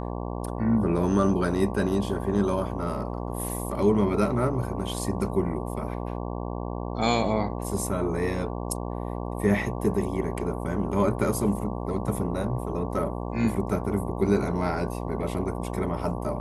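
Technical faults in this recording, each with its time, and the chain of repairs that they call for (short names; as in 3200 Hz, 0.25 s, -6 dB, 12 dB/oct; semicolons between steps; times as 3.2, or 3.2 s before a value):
buzz 60 Hz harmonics 19 -32 dBFS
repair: de-hum 60 Hz, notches 19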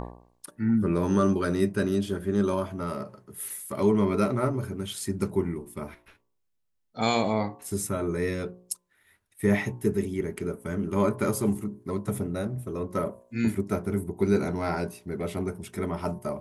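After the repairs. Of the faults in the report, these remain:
none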